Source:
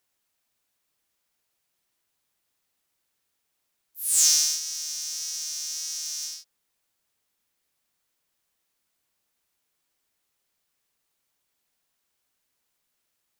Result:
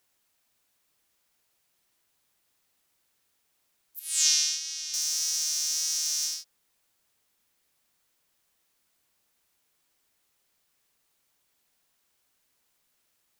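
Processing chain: 3.99–4.94 s: band-pass filter 2.8 kHz, Q 1.2; trim +4 dB

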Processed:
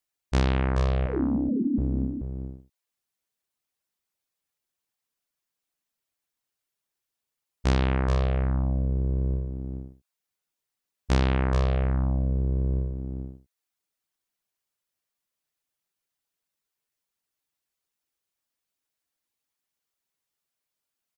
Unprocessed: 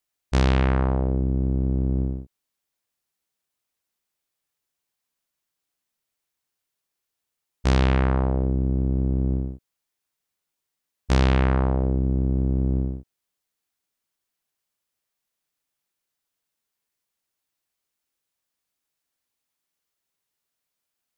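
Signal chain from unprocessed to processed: 1.06–1.78 s: formants replaced by sine waves; reverb removal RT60 0.56 s; delay 430 ms -6.5 dB; trim -2.5 dB

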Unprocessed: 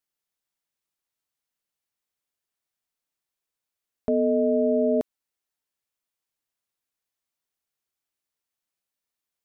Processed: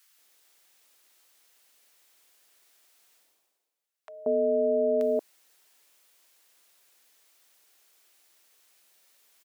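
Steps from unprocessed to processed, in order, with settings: high-pass 400 Hz 12 dB/octave; reverse; upward compressor, threshold -44 dBFS; reverse; bands offset in time highs, lows 180 ms, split 1 kHz

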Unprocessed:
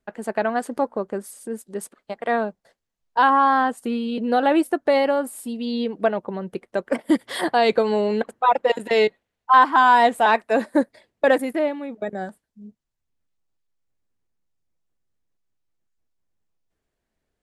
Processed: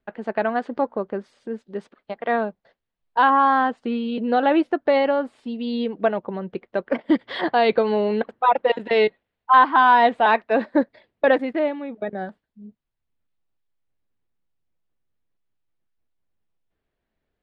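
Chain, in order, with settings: low-pass 4 kHz 24 dB/octave

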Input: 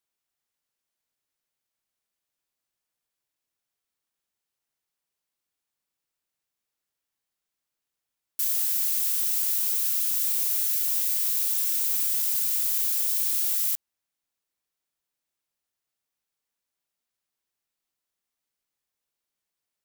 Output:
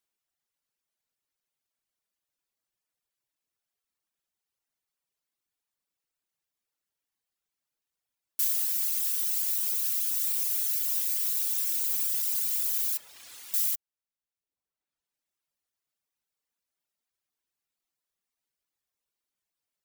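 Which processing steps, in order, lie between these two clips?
12.97–13.54 s: RIAA curve playback; reverb removal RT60 1.3 s

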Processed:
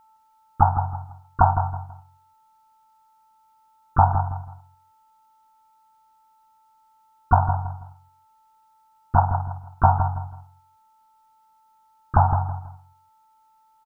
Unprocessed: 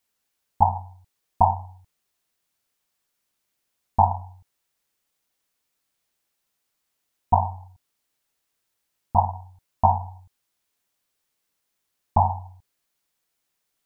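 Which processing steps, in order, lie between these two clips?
dynamic bell 200 Hz, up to -6 dB, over -36 dBFS, Q 0.78; whistle 880 Hz -56 dBFS; bass shelf 310 Hz +7.5 dB; feedback delay 163 ms, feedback 28%, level -9 dB; harmony voices +7 st -12 dB

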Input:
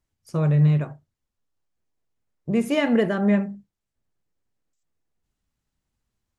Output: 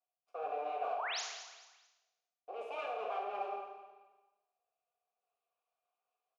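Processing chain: comb filter that takes the minimum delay 4.2 ms; Chebyshev high-pass 380 Hz, order 5; treble shelf 5.4 kHz -8.5 dB; waveshaping leveller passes 3; reverse; compression 16:1, threshold -44 dBFS, peak gain reduction 28 dB; reverse; one-sided clip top -41 dBFS; vowel filter a; painted sound rise, 0.96–1.21 s, 620–7500 Hz -55 dBFS; feedback delay 220 ms, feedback 34%, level -13 dB; Schroeder reverb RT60 0.94 s, combs from 26 ms, DRR 1 dB; trim +14.5 dB

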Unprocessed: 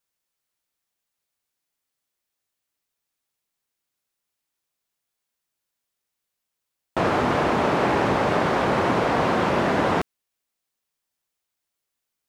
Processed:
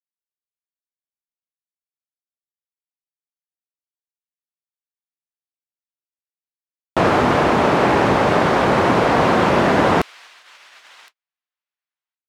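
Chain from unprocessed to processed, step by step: feedback echo behind a high-pass 1065 ms, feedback 43%, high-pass 2.9 kHz, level -14 dB; level rider gain up to 7 dB; gate -43 dBFS, range -45 dB

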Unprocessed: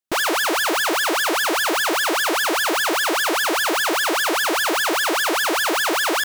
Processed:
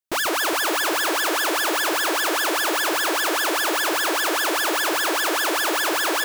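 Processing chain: treble shelf 7.9 kHz +3.5 dB; hum notches 60/120/180/240/300 Hz; on a send: echo whose repeats swap between lows and highs 138 ms, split 1.5 kHz, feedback 78%, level -8.5 dB; on the sum: trim -3 dB

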